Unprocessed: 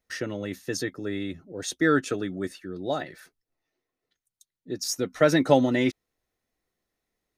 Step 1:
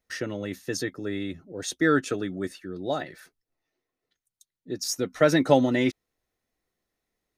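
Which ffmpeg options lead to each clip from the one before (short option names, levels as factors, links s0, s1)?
-af anull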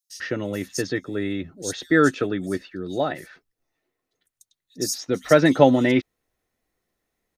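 -filter_complex "[0:a]acrossover=split=4500[s0][s1];[s0]adelay=100[s2];[s2][s1]amix=inputs=2:normalize=0,volume=1.68"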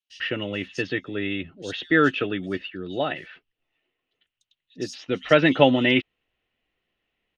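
-af "lowpass=f=2900:t=q:w=6.8,volume=0.75"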